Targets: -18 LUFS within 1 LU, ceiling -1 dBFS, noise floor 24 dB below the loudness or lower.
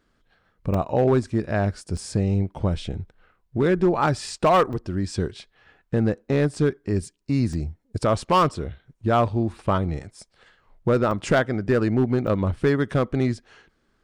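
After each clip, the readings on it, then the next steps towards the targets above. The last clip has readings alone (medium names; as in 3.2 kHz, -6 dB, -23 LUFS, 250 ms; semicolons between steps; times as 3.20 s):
clipped samples 0.8%; clipping level -12.0 dBFS; dropouts 6; longest dropout 3.3 ms; loudness -23.5 LUFS; peak level -12.0 dBFS; loudness target -18.0 LUFS
-> clip repair -12 dBFS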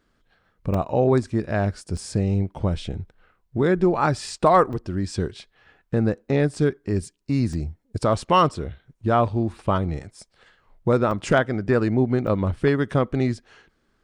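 clipped samples 0.0%; dropouts 6; longest dropout 3.3 ms
-> interpolate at 0.74/1.97/4.73/7.53/11.11/12.27 s, 3.3 ms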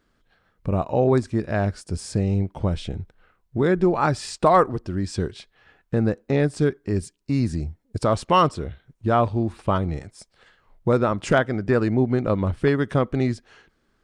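dropouts 0; loudness -23.0 LUFS; peak level -5.0 dBFS; loudness target -18.0 LUFS
-> trim +5 dB; peak limiter -1 dBFS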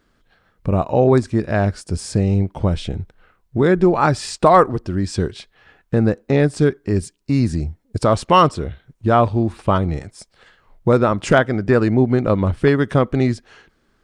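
loudness -18.0 LUFS; peak level -1.0 dBFS; noise floor -63 dBFS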